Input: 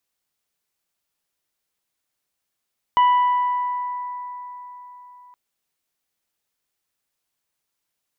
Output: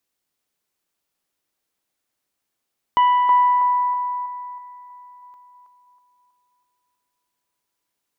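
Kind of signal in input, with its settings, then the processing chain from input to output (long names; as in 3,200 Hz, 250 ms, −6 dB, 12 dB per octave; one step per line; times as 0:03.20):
harmonic partials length 2.37 s, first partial 987 Hz, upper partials −17.5/−18 dB, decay 4.19 s, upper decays 3.18/1.30 s, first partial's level −11.5 dB
parametric band 300 Hz +5 dB 1.2 octaves
on a send: feedback echo with a band-pass in the loop 322 ms, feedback 49%, band-pass 870 Hz, level −3.5 dB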